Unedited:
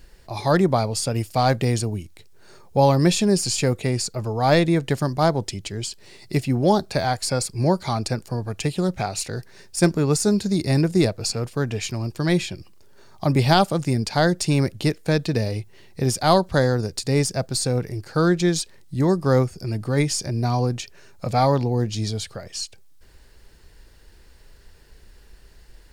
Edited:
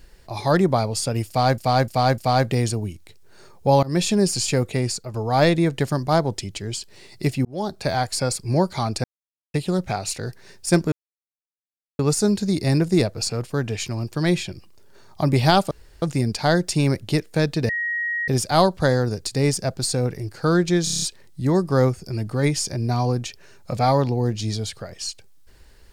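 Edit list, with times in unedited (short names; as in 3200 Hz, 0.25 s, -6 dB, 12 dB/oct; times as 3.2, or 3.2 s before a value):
1.28–1.58 loop, 4 plays
2.93–3.25 fade in equal-power, from -23.5 dB
3.97–4.24 fade out, to -7.5 dB
6.55–7.02 fade in
8.14–8.64 mute
10.02 insert silence 1.07 s
13.74 insert room tone 0.31 s
15.41–16 bleep 1890 Hz -22 dBFS
18.56 stutter 0.03 s, 7 plays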